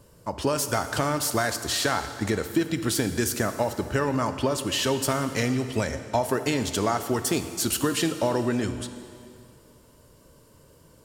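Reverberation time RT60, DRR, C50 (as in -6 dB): 2.3 s, 9.0 dB, 10.0 dB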